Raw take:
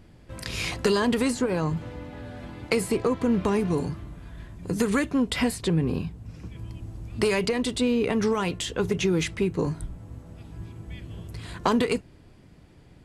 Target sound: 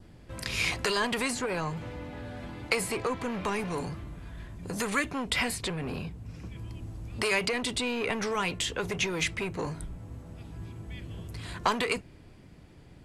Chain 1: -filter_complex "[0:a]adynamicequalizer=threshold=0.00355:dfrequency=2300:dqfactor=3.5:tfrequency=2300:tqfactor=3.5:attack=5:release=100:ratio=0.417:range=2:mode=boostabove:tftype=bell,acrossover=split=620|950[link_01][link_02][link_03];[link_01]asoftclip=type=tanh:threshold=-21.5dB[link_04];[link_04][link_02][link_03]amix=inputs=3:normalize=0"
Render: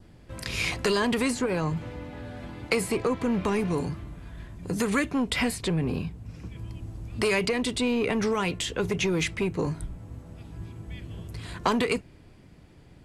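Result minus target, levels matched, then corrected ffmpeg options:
soft clipping: distortion −10 dB
-filter_complex "[0:a]adynamicequalizer=threshold=0.00355:dfrequency=2300:dqfactor=3.5:tfrequency=2300:tqfactor=3.5:attack=5:release=100:ratio=0.417:range=2:mode=boostabove:tftype=bell,acrossover=split=620|950[link_01][link_02][link_03];[link_01]asoftclip=type=tanh:threshold=-33.5dB[link_04];[link_04][link_02][link_03]amix=inputs=3:normalize=0"

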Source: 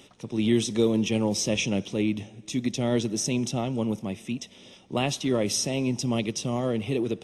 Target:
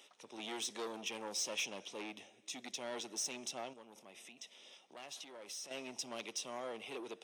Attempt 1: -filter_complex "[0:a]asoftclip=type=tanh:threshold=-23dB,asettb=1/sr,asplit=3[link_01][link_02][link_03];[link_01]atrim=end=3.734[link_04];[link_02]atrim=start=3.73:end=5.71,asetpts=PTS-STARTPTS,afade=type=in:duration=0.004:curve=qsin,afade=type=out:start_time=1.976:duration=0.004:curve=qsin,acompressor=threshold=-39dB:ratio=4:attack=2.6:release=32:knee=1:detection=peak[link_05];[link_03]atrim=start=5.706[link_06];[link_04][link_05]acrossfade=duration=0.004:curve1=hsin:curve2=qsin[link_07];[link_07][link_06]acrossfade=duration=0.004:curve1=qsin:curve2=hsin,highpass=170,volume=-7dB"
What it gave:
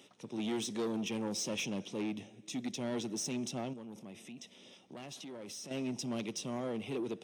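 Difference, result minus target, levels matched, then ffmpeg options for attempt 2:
125 Hz band +16.0 dB
-filter_complex "[0:a]asoftclip=type=tanh:threshold=-23dB,asettb=1/sr,asplit=3[link_01][link_02][link_03];[link_01]atrim=end=3.734[link_04];[link_02]atrim=start=3.73:end=5.71,asetpts=PTS-STARTPTS,afade=type=in:duration=0.004:curve=qsin,afade=type=out:start_time=1.976:duration=0.004:curve=qsin,acompressor=threshold=-39dB:ratio=4:attack=2.6:release=32:knee=1:detection=peak[link_05];[link_03]atrim=start=5.706[link_06];[link_04][link_05]acrossfade=duration=0.004:curve1=hsin:curve2=qsin[link_07];[link_07][link_06]acrossfade=duration=0.004:curve1=qsin:curve2=hsin,highpass=620,volume=-7dB"

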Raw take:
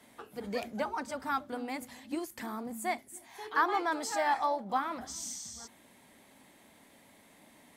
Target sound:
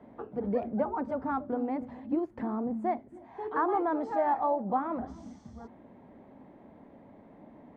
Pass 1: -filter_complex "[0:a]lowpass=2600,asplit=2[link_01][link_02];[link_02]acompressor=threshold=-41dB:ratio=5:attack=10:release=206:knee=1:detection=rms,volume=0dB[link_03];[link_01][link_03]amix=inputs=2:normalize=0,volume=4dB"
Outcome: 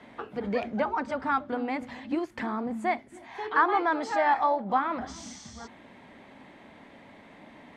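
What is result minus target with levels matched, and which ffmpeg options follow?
2,000 Hz band +10.0 dB
-filter_complex "[0:a]lowpass=720,asplit=2[link_01][link_02];[link_02]acompressor=threshold=-41dB:ratio=5:attack=10:release=206:knee=1:detection=rms,volume=0dB[link_03];[link_01][link_03]amix=inputs=2:normalize=0,volume=4dB"

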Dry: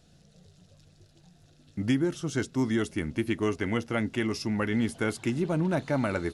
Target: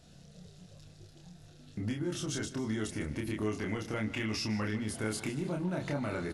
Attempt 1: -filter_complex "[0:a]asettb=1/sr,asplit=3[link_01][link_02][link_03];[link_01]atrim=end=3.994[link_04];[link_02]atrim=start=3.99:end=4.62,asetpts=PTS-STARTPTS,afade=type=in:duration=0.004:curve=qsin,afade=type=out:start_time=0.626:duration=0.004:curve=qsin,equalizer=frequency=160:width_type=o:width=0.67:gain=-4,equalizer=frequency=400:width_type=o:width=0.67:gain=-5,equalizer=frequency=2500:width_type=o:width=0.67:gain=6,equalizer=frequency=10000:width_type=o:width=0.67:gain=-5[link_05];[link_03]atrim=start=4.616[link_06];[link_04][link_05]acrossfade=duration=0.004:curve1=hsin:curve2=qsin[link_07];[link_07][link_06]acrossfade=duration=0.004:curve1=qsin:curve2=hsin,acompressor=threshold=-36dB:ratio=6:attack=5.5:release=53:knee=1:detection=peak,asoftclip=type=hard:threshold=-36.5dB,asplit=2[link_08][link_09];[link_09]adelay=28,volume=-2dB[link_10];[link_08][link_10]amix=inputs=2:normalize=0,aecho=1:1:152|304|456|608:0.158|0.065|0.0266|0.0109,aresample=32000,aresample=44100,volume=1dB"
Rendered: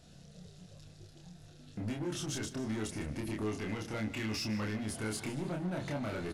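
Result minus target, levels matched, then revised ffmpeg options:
hard clipping: distortion +25 dB
-filter_complex "[0:a]asettb=1/sr,asplit=3[link_01][link_02][link_03];[link_01]atrim=end=3.994[link_04];[link_02]atrim=start=3.99:end=4.62,asetpts=PTS-STARTPTS,afade=type=in:duration=0.004:curve=qsin,afade=type=out:start_time=0.626:duration=0.004:curve=qsin,equalizer=frequency=160:width_type=o:width=0.67:gain=-4,equalizer=frequency=400:width_type=o:width=0.67:gain=-5,equalizer=frequency=2500:width_type=o:width=0.67:gain=6,equalizer=frequency=10000:width_type=o:width=0.67:gain=-5[link_05];[link_03]atrim=start=4.616[link_06];[link_04][link_05]acrossfade=duration=0.004:curve1=hsin:curve2=qsin[link_07];[link_07][link_06]acrossfade=duration=0.004:curve1=qsin:curve2=hsin,acompressor=threshold=-36dB:ratio=6:attack=5.5:release=53:knee=1:detection=peak,asoftclip=type=hard:threshold=-28.5dB,asplit=2[link_08][link_09];[link_09]adelay=28,volume=-2dB[link_10];[link_08][link_10]amix=inputs=2:normalize=0,aecho=1:1:152|304|456|608:0.158|0.065|0.0266|0.0109,aresample=32000,aresample=44100,volume=1dB"

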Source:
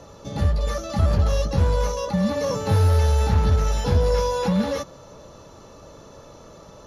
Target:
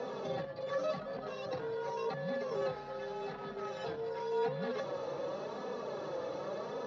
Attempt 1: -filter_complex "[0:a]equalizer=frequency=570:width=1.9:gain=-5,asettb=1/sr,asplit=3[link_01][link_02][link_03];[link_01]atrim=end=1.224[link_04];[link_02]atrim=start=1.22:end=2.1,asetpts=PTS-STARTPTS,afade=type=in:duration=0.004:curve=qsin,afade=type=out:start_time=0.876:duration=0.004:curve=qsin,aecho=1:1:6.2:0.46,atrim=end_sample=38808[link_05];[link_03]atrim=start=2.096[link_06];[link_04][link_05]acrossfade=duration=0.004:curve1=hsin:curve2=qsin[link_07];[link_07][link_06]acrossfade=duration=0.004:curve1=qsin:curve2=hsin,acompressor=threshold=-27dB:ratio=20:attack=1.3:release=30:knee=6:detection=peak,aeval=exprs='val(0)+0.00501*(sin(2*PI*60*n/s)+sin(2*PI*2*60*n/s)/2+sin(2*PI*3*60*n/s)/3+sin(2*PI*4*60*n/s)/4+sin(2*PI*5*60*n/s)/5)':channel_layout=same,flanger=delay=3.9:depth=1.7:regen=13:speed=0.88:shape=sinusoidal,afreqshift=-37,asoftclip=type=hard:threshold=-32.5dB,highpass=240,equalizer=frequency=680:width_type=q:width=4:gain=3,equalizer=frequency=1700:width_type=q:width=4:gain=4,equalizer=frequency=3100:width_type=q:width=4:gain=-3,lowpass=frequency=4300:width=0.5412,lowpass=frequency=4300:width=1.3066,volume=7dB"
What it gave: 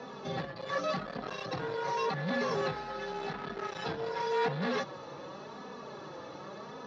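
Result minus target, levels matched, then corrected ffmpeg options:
downward compressor: peak gain reduction −8 dB; 500 Hz band −3.0 dB
-filter_complex "[0:a]equalizer=frequency=570:width=1.9:gain=5.5,asettb=1/sr,asplit=3[link_01][link_02][link_03];[link_01]atrim=end=1.224[link_04];[link_02]atrim=start=1.22:end=2.1,asetpts=PTS-STARTPTS,afade=type=in:duration=0.004:curve=qsin,afade=type=out:start_time=0.876:duration=0.004:curve=qsin,aecho=1:1:6.2:0.46,atrim=end_sample=38808[link_05];[link_03]atrim=start=2.096[link_06];[link_04][link_05]acrossfade=duration=0.004:curve1=hsin:curve2=qsin[link_07];[link_07][link_06]acrossfade=duration=0.004:curve1=qsin:curve2=hsin,acompressor=threshold=-35dB:ratio=20:attack=1.3:release=30:knee=6:detection=peak,aeval=exprs='val(0)+0.00501*(sin(2*PI*60*n/s)+sin(2*PI*2*60*n/s)/2+sin(2*PI*3*60*n/s)/3+sin(2*PI*4*60*n/s)/4+sin(2*PI*5*60*n/s)/5)':channel_layout=same,flanger=delay=3.9:depth=1.7:regen=13:speed=0.88:shape=sinusoidal,afreqshift=-37,asoftclip=type=hard:threshold=-32.5dB,highpass=240,equalizer=frequency=680:width_type=q:width=4:gain=3,equalizer=frequency=1700:width_type=q:width=4:gain=4,equalizer=frequency=3100:width_type=q:width=4:gain=-3,lowpass=frequency=4300:width=0.5412,lowpass=frequency=4300:width=1.3066,volume=7dB"

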